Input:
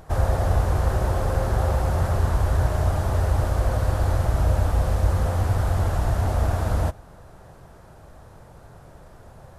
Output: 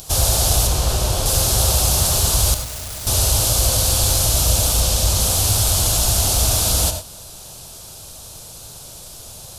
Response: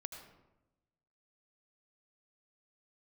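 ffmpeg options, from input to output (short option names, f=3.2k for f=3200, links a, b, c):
-filter_complex "[0:a]asettb=1/sr,asplit=3[a][b][c];[a]atrim=end=0.674[d];[b]atrim=start=0.67:end=1.26,asetpts=PTS-STARTPTS,afade=t=in:d=0.004:c=qsin,afade=t=out:st=0.586:d=0.004:c=qsin,highshelf=f=4.5k:g=-9[e];[c]atrim=start=1.256[f];[d][e]acrossfade=d=0.004:c1=hsin:c2=qsin[g];[g][f]acrossfade=d=0.004:c1=qsin:c2=hsin,aexciter=amount=11.2:drive=7:freq=2.8k,asettb=1/sr,asplit=3[h][i][j];[h]atrim=end=4.804[k];[i]atrim=start=4.8:end=5.2,asetpts=PTS-STARTPTS,afade=t=in:d=0.004:c=qsin,afade=t=out:st=0.396:d=0.004:c=qsin,equalizer=f=11k:t=o:w=0.77:g=-4[l];[j]atrim=start=5.196[m];[k][l]acrossfade=d=0.004:c1=hsin:c2=qsin[n];[n][m]acrossfade=d=0.004:c1=qsin:c2=hsin,acontrast=48,asettb=1/sr,asplit=3[o][p][q];[o]atrim=end=2.544[r];[p]atrim=start=2.54:end=3.07,asetpts=PTS-STARTPTS,afade=t=in:d=0.004:c=qsin,afade=t=out:st=0.526:d=0.004:c=qsin,asoftclip=type=hard:threshold=-25.5dB[s];[q]atrim=start=3.066[t];[r][s]acrossfade=d=0.004:c1=hsin:c2=qsin[u];[u][t]acrossfade=d=0.004:c1=qsin:c2=hsin[v];[1:a]atrim=start_sample=2205,afade=t=out:st=0.17:d=0.01,atrim=end_sample=7938[w];[v][w]afir=irnorm=-1:irlink=0"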